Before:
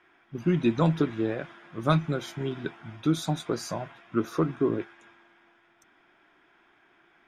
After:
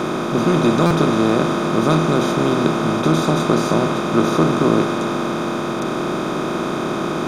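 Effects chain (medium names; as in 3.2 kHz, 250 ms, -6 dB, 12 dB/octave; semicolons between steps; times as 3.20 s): spectral levelling over time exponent 0.2; on a send at -16 dB: reverberation RT60 0.70 s, pre-delay 3 ms; on the sum: buffer glitch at 0.86 s, samples 256, times 7; trim +2 dB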